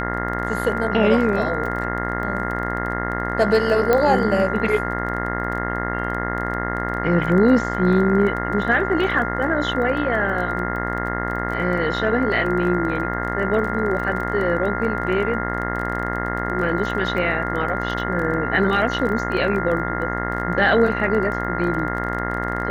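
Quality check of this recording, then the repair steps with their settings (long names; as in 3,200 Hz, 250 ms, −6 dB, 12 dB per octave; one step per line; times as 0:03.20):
mains buzz 60 Hz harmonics 35 −26 dBFS
surface crackle 20 per second −28 dBFS
whistle 1,400 Hz −27 dBFS
0:03.93: click −6 dBFS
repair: click removal
notch filter 1,400 Hz, Q 30
hum removal 60 Hz, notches 35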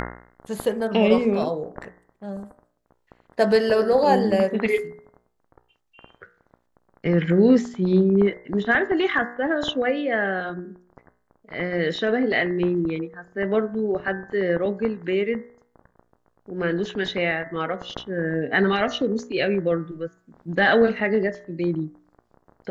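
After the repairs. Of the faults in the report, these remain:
none of them is left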